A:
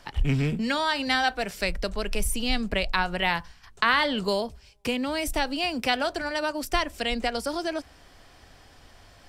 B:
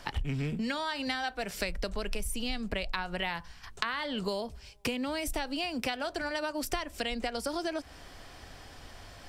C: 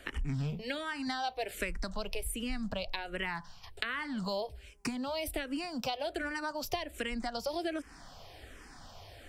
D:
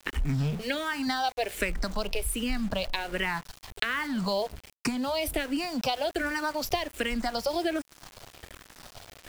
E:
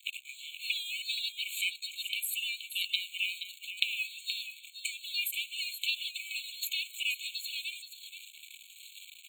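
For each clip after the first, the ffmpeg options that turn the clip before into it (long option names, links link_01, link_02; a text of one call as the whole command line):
ffmpeg -i in.wav -af "acompressor=threshold=-33dB:ratio=10,volume=3.5dB" out.wav
ffmpeg -i in.wav -filter_complex "[0:a]acrossover=split=820|5800[link_01][link_02][link_03];[link_01]crystalizer=i=8.5:c=0[link_04];[link_04][link_02][link_03]amix=inputs=3:normalize=0,asplit=2[link_05][link_06];[link_06]afreqshift=-1.3[link_07];[link_05][link_07]amix=inputs=2:normalize=1" out.wav
ffmpeg -i in.wav -af "aeval=exprs='val(0)*gte(abs(val(0)),0.00501)':channel_layout=same,volume=6.5dB" out.wav
ffmpeg -i in.wav -af "afftfilt=real='real(if(between(b,1,1008),(2*floor((b-1)/24)+1)*24-b,b),0)':imag='imag(if(between(b,1,1008),(2*floor((b-1)/24)+1)*24-b,b),0)*if(between(b,1,1008),-1,1)':win_size=2048:overlap=0.75,aecho=1:1:475:0.316,afftfilt=real='re*eq(mod(floor(b*sr/1024/2200),2),1)':imag='im*eq(mod(floor(b*sr/1024/2200),2),1)':win_size=1024:overlap=0.75,volume=3.5dB" out.wav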